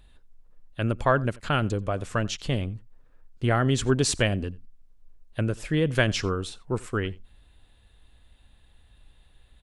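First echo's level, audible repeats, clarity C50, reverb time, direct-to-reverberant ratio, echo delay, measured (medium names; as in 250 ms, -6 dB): -23.5 dB, 1, no reverb, no reverb, no reverb, 88 ms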